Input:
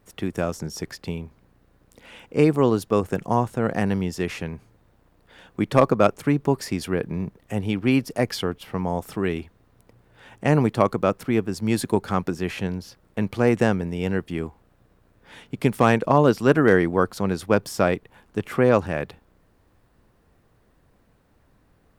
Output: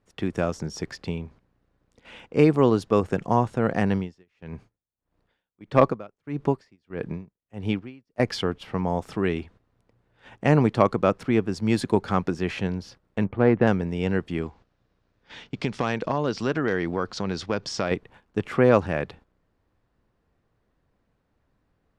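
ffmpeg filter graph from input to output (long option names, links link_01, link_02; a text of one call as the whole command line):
ffmpeg -i in.wav -filter_complex "[0:a]asettb=1/sr,asplit=3[link_01][link_02][link_03];[link_01]atrim=end=3.954[link_04];[link_02]atrim=start=3.95:end=8.2,asetpts=PTS-STARTPTS,afade=type=in:duration=0.004:curve=qsin,afade=type=out:start_time=4.246:duration=0.004:curve=qsin,acrossover=split=4700[link_05][link_06];[link_06]acompressor=threshold=-46dB:ratio=4:attack=1:release=60[link_07];[link_05][link_07]amix=inputs=2:normalize=0,aeval=exprs='val(0)*pow(10,-31*(0.5-0.5*cos(2*PI*1.6*n/s))/20)':channel_layout=same[link_08];[link_03]atrim=start=8.196[link_09];[link_04][link_08]acrossfade=duration=0.004:curve1=hsin:curve2=qsin[link_10];[link_10][link_09]acrossfade=duration=0.004:curve1=qsin:curve2=hsin,asettb=1/sr,asplit=3[link_11][link_12][link_13];[link_11]atrim=end=13.244[link_14];[link_12]atrim=start=13.24:end=13.67,asetpts=PTS-STARTPTS,afade=type=in:duration=0.004:curve=qsin,afade=type=out:start_time=0.426:duration=0.004:curve=qsin,adynamicsmooth=sensitivity=2:basefreq=1500,lowpass=2300[link_15];[link_13]atrim=start=13.666[link_16];[link_14][link_15]acrossfade=duration=0.004:curve1=hsin:curve2=qsin[link_17];[link_17][link_16]acrossfade=duration=0.004:curve1=qsin:curve2=hsin,asettb=1/sr,asplit=3[link_18][link_19][link_20];[link_18]atrim=end=14.414[link_21];[link_19]atrim=start=14.41:end=17.91,asetpts=PTS-STARTPTS,afade=type=in:duration=0.004:curve=qsin,afade=type=out:start_time=3.496:duration=0.004:curve=qsin,lowpass=frequency=5800:width=0.5412,lowpass=frequency=5800:width=1.3066,aemphasis=mode=production:type=75fm,acompressor=threshold=-23dB:ratio=2.5:attack=3.2:release=140:knee=1:detection=peak[link_22];[link_20]atrim=start=17.906[link_23];[link_21][link_22]acrossfade=duration=0.004:curve1=hsin:curve2=qsin[link_24];[link_24][link_23]acrossfade=duration=0.004:curve1=qsin:curve2=hsin,lowpass=6100,agate=range=-10dB:threshold=-48dB:ratio=16:detection=peak" out.wav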